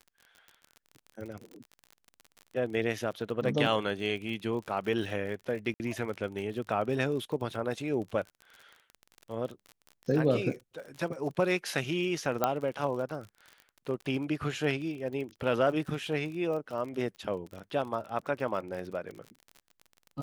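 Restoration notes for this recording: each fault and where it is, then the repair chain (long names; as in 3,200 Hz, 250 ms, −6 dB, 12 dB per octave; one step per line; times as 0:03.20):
surface crackle 41 per second −38 dBFS
0:05.74–0:05.80: drop-out 59 ms
0:12.44: click −12 dBFS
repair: click removal
repair the gap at 0:05.74, 59 ms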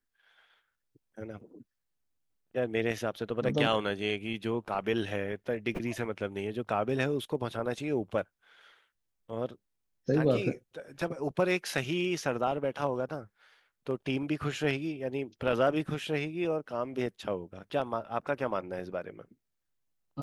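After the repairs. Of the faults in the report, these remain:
none of them is left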